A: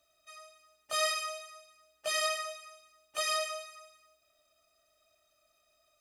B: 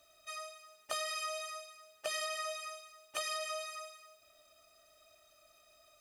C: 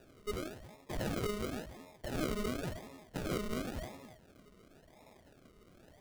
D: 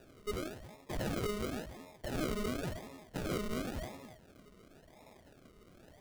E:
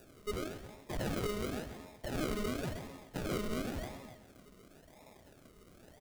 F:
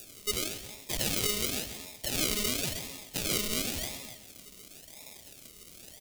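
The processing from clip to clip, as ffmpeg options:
ffmpeg -i in.wav -af "bandreject=frequency=60:width_type=h:width=6,bandreject=frequency=120:width_type=h:width=6,bandreject=frequency=180:width_type=h:width=6,bandreject=frequency=240:width_type=h:width=6,bandreject=frequency=300:width_type=h:width=6,alimiter=level_in=4.5dB:limit=-24dB:level=0:latency=1:release=413,volume=-4.5dB,acompressor=threshold=-42dB:ratio=6,volume=7dB" out.wav
ffmpeg -i in.wav -af "equalizer=frequency=700:width_type=o:width=0.77:gain=-2.5,alimiter=level_in=7.5dB:limit=-24dB:level=0:latency=1:release=203,volume=-7.5dB,acrusher=samples=41:mix=1:aa=0.000001:lfo=1:lforange=24.6:lforate=0.94,volume=5.5dB" out.wav
ffmpeg -i in.wav -af "asoftclip=type=tanh:threshold=-29dB,volume=1.5dB" out.wav
ffmpeg -i in.wav -filter_complex "[0:a]acrossover=split=6100[link_01][link_02];[link_02]acompressor=mode=upward:threshold=-60dB:ratio=2.5[link_03];[link_01][link_03]amix=inputs=2:normalize=0,aecho=1:1:131|262|393|524:0.251|0.1|0.0402|0.0161" out.wav
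ffmpeg -i in.wav -af "aexciter=amount=6.3:drive=3.8:freq=2200" out.wav

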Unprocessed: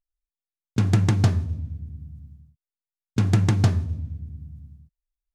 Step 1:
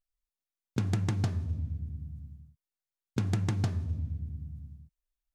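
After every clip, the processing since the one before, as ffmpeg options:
ffmpeg -i in.wav -af "acompressor=threshold=-26dB:ratio=4,volume=-1.5dB" out.wav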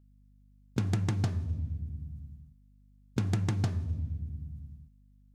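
ffmpeg -i in.wav -af "aeval=exprs='val(0)+0.00112*(sin(2*PI*50*n/s)+sin(2*PI*2*50*n/s)/2+sin(2*PI*3*50*n/s)/3+sin(2*PI*4*50*n/s)/4+sin(2*PI*5*50*n/s)/5)':channel_layout=same" out.wav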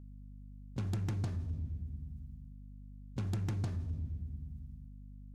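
ffmpeg -i in.wav -af "asoftclip=type=tanh:threshold=-26dB,aeval=exprs='val(0)+0.00447*(sin(2*PI*50*n/s)+sin(2*PI*2*50*n/s)/2+sin(2*PI*3*50*n/s)/3+sin(2*PI*4*50*n/s)/4+sin(2*PI*5*50*n/s)/5)':channel_layout=same,volume=-3.5dB" out.wav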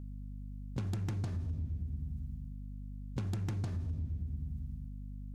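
ffmpeg -i in.wav -af "acompressor=threshold=-40dB:ratio=6,volume=6.5dB" out.wav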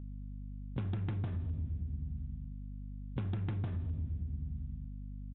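ffmpeg -i in.wav -af "aresample=8000,aresample=44100" out.wav

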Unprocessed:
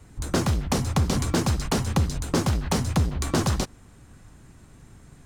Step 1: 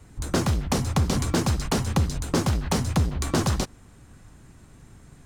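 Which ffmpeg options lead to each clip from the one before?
ffmpeg -i in.wav -af anull out.wav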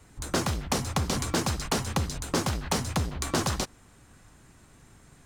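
ffmpeg -i in.wav -af "lowshelf=frequency=380:gain=-7.5" out.wav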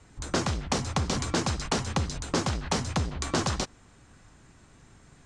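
ffmpeg -i in.wav -af "lowpass=frequency=8000:width=0.5412,lowpass=frequency=8000:width=1.3066" out.wav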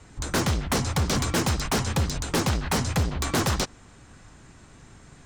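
ffmpeg -i in.wav -af "aeval=exprs='0.0708*(abs(mod(val(0)/0.0708+3,4)-2)-1)':channel_layout=same,volume=5.5dB" out.wav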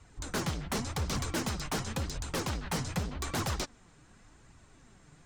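ffmpeg -i in.wav -af "flanger=delay=0.7:depth=6.3:regen=46:speed=0.88:shape=triangular,volume=-4.5dB" out.wav

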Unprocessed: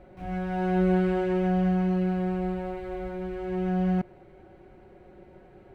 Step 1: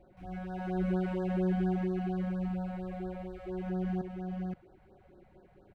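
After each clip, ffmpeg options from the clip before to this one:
ffmpeg -i in.wav -af "aecho=1:1:523:0.708,afftfilt=real='re*(1-between(b*sr/1024,290*pow(2600/290,0.5+0.5*sin(2*PI*4.3*pts/sr))/1.41,290*pow(2600/290,0.5+0.5*sin(2*PI*4.3*pts/sr))*1.41))':imag='im*(1-between(b*sr/1024,290*pow(2600/290,0.5+0.5*sin(2*PI*4.3*pts/sr))/1.41,290*pow(2600/290,0.5+0.5*sin(2*PI*4.3*pts/sr))*1.41))':win_size=1024:overlap=0.75,volume=-8.5dB" out.wav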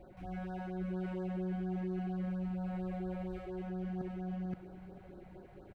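ffmpeg -i in.wav -af "areverse,acompressor=threshold=-44dB:ratio=4,areverse,aecho=1:1:441|882|1323|1764:0.178|0.0782|0.0344|0.0151,volume=5dB" out.wav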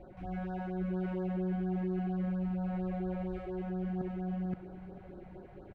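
ffmpeg -i in.wav -af "lowpass=frequency=2600:poles=1,volume=3.5dB" out.wav

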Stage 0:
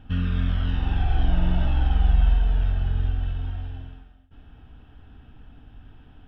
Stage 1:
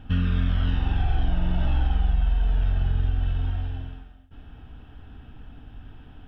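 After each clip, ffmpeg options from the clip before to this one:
ffmpeg -i in.wav -af "acompressor=threshold=-21dB:ratio=6,volume=3.5dB" out.wav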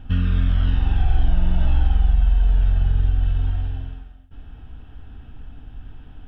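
ffmpeg -i in.wav -af "lowshelf=frequency=61:gain=8.5" out.wav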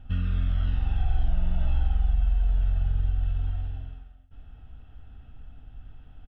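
ffmpeg -i in.wav -af "aecho=1:1:1.5:0.34,volume=-9dB" out.wav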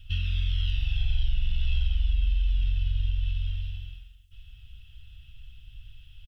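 ffmpeg -i in.wav -af "firequalizer=gain_entry='entry(110,0);entry(210,-17);entry(470,-26);entry(2800,15)':delay=0.05:min_phase=1,volume=-1.5dB" out.wav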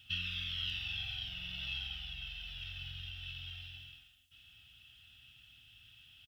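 ffmpeg -i in.wav -af "highpass=250,volume=1.5dB" out.wav

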